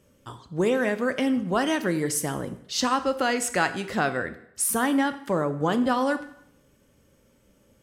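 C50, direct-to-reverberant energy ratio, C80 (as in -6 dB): 13.5 dB, 10.0 dB, 15.5 dB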